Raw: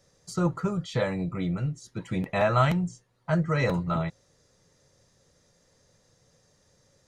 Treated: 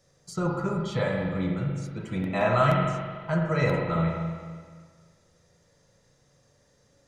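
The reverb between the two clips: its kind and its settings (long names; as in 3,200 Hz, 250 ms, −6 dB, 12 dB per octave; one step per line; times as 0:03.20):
spring reverb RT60 1.7 s, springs 36/43 ms, chirp 70 ms, DRR −0.5 dB
level −2 dB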